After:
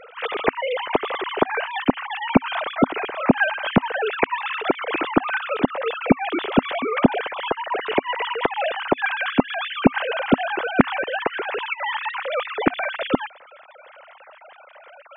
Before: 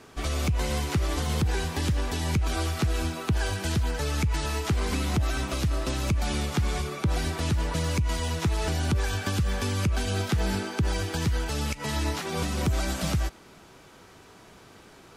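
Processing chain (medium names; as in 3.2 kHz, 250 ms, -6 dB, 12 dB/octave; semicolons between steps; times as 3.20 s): formants replaced by sine waves; dynamic bell 260 Hz, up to +3 dB, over -34 dBFS, Q 5.8; trim +3 dB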